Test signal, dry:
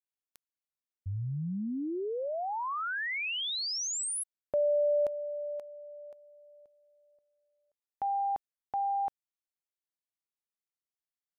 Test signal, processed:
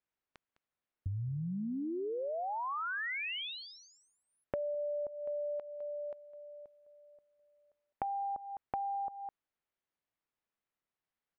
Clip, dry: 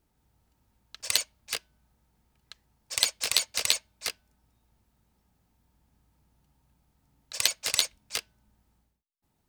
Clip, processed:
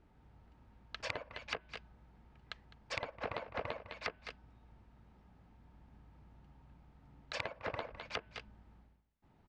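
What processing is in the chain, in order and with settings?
on a send: echo 0.207 s -16.5 dB; on the sum: treble ducked by the level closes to 1000 Hz, closed at -28 dBFS; LPF 2300 Hz 12 dB/oct; compressor 12:1, threshold -43 dBFS; gain +8 dB

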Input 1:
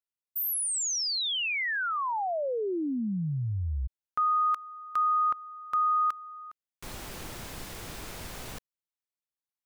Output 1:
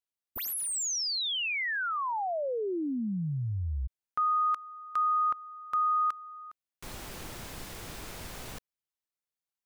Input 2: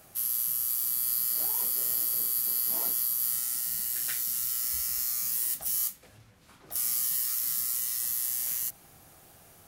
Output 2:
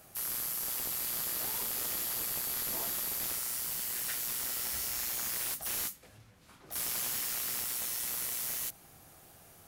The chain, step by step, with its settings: slew limiter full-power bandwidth 270 Hz; gain -1.5 dB

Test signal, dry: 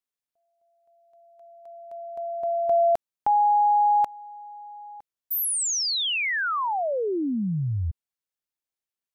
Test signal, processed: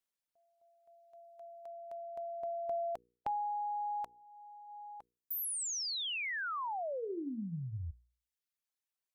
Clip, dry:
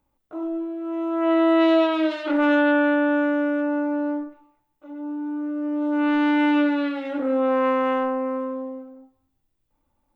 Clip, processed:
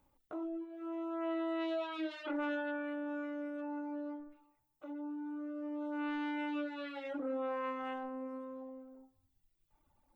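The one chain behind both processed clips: reverb removal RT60 1.3 s; notches 60/120/180/240/300/360/420/480 Hz; compressor 2:1, threshold -49 dBFS; gain +1 dB

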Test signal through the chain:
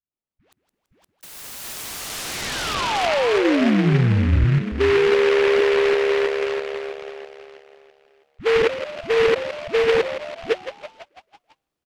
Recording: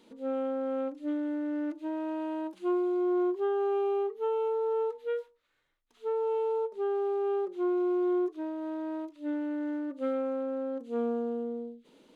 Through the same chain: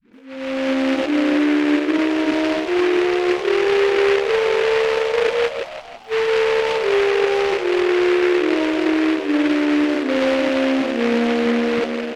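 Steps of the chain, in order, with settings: reverse delay 0.327 s, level -6 dB; reverse; compressor 6:1, threshold -39 dBFS; reverse; tilt shelf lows +8.5 dB, about 1300 Hz; de-hum 90.43 Hz, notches 4; AGC gain up to 16 dB; dispersion highs, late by 0.132 s, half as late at 460 Hz; on a send: frequency-shifting echo 0.166 s, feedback 57%, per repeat +72 Hz, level -11.5 dB; on the sum: treble ducked by the level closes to 1800 Hz, closed at -16.5 dBFS; noise-modulated delay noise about 1700 Hz, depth 0.13 ms

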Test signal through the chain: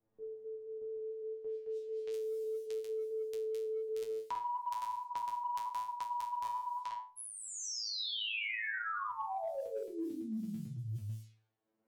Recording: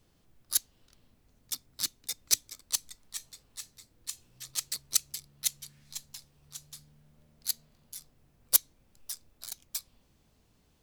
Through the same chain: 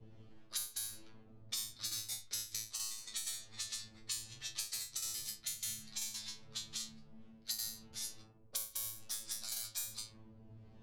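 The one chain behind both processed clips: reverse delay 0.111 s, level -0.5 dB; resonator 110 Hz, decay 0.37 s, harmonics all, mix 100%; reverse; compressor 10:1, threshold -47 dBFS; reverse; low-pass opened by the level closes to 460 Hz, open at -49 dBFS; three-band squash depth 100%; gain +10.5 dB

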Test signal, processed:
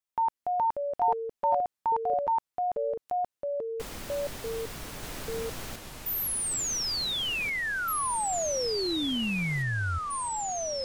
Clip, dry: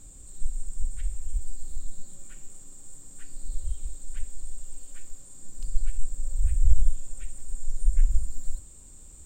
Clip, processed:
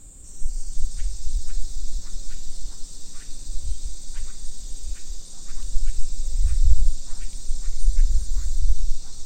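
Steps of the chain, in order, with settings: echoes that change speed 0.242 s, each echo -4 st, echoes 3; gain +3 dB

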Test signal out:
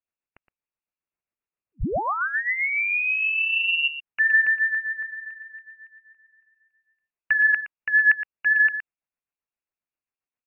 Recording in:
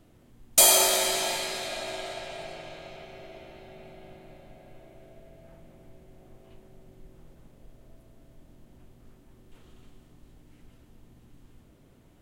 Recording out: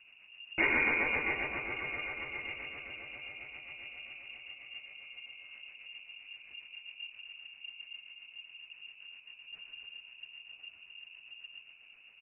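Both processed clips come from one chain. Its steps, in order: outdoor echo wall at 20 m, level -10 dB; rotary speaker horn 7.5 Hz; inverted band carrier 2800 Hz

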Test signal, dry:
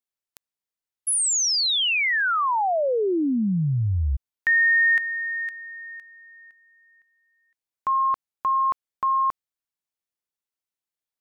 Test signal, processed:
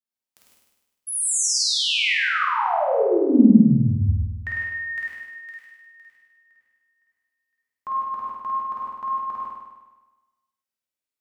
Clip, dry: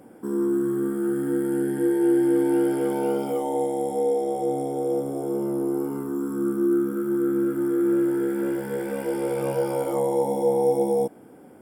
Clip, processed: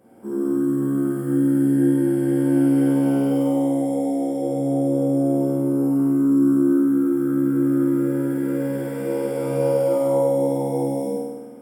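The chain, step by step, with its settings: dynamic EQ 230 Hz, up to +7 dB, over -36 dBFS, Q 1.1; on a send: flutter echo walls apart 8.7 m, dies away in 1.2 s; on the sum: non-linear reverb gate 0.19 s flat, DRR -4 dB; gain -8.5 dB

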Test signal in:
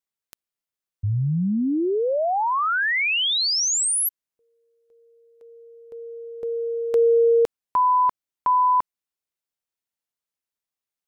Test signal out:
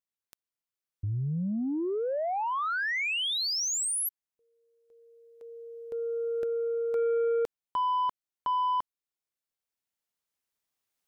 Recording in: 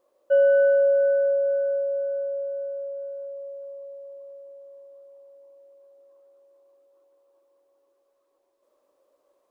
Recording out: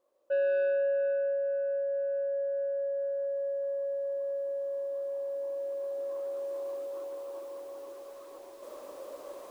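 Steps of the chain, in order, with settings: recorder AGC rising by 6 dB/s, up to +31 dB; soft clip -16 dBFS; gain -7 dB

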